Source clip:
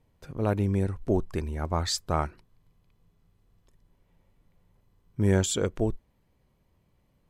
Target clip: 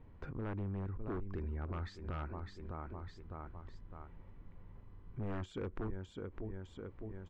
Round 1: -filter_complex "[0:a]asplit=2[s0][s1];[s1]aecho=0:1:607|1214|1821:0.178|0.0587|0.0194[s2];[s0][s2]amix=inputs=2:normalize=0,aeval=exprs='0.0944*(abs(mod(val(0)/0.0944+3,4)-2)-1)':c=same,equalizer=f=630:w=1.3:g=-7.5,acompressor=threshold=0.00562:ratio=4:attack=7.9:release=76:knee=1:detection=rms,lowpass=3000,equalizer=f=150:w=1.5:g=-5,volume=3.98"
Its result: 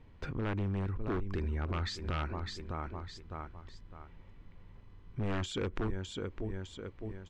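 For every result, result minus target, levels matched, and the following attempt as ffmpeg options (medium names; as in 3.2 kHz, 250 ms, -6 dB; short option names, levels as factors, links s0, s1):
4 kHz band +9.5 dB; compression: peak gain reduction -5.5 dB
-filter_complex "[0:a]asplit=2[s0][s1];[s1]aecho=0:1:607|1214|1821:0.178|0.0587|0.0194[s2];[s0][s2]amix=inputs=2:normalize=0,aeval=exprs='0.0944*(abs(mod(val(0)/0.0944+3,4)-2)-1)':c=same,equalizer=f=630:w=1.3:g=-7.5,acompressor=threshold=0.00562:ratio=4:attack=7.9:release=76:knee=1:detection=rms,lowpass=1500,equalizer=f=150:w=1.5:g=-5,volume=3.98"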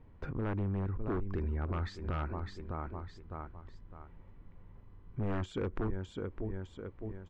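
compression: peak gain reduction -5.5 dB
-filter_complex "[0:a]asplit=2[s0][s1];[s1]aecho=0:1:607|1214|1821:0.178|0.0587|0.0194[s2];[s0][s2]amix=inputs=2:normalize=0,aeval=exprs='0.0944*(abs(mod(val(0)/0.0944+3,4)-2)-1)':c=same,equalizer=f=630:w=1.3:g=-7.5,acompressor=threshold=0.00237:ratio=4:attack=7.9:release=76:knee=1:detection=rms,lowpass=1500,equalizer=f=150:w=1.5:g=-5,volume=3.98"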